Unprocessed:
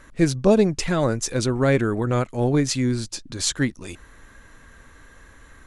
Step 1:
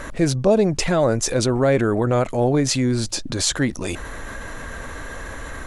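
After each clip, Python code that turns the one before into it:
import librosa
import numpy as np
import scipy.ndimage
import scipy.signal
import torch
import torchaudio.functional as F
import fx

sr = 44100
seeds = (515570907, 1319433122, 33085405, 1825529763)

y = fx.peak_eq(x, sr, hz=640.0, db=7.0, octaves=1.0)
y = fx.env_flatten(y, sr, amount_pct=50)
y = y * 10.0 ** (-4.5 / 20.0)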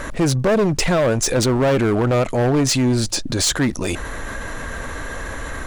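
y = np.clip(10.0 ** (17.5 / 20.0) * x, -1.0, 1.0) / 10.0 ** (17.5 / 20.0)
y = fx.dmg_crackle(y, sr, seeds[0], per_s=17.0, level_db=-43.0)
y = y * 10.0 ** (4.0 / 20.0)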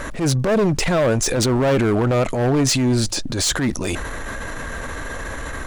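y = fx.transient(x, sr, attack_db=-8, sustain_db=3)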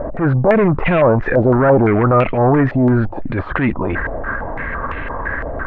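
y = fx.air_absorb(x, sr, metres=490.0)
y = fx.filter_held_lowpass(y, sr, hz=5.9, low_hz=670.0, high_hz=2600.0)
y = y * 10.0 ** (4.5 / 20.0)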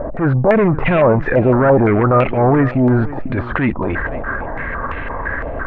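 y = fx.echo_feedback(x, sr, ms=505, feedback_pct=18, wet_db=-16.0)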